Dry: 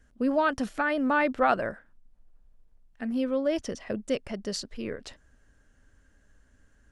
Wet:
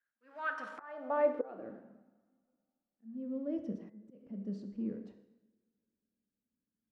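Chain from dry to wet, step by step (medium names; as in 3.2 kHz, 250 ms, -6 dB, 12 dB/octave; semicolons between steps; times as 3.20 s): companding laws mixed up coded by mu; gate -41 dBFS, range -23 dB; bass shelf 97 Hz -10.5 dB; two-slope reverb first 0.92 s, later 2.7 s, from -25 dB, DRR 6.5 dB; slow attack 526 ms; band-pass sweep 1.6 kHz -> 210 Hz, 0.47–1.93 s; de-hum 92.25 Hz, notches 22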